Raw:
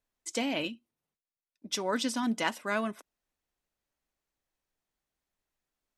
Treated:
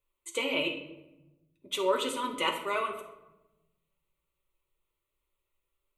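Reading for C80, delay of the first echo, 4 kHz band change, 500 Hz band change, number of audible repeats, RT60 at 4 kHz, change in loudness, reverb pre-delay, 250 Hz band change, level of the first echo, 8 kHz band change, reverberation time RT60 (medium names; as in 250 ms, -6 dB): 10.5 dB, no echo, +3.0 dB, +4.0 dB, no echo, 0.60 s, +1.0 dB, 5 ms, -6.0 dB, no echo, -3.5 dB, 1.0 s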